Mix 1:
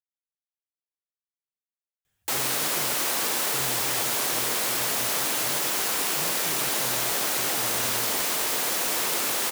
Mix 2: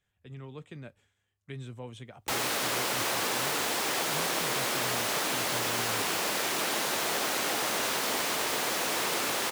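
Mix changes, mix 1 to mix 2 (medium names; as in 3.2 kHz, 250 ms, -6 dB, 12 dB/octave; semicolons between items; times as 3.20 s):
speech: entry -2.05 s; master: add treble shelf 6.9 kHz -10.5 dB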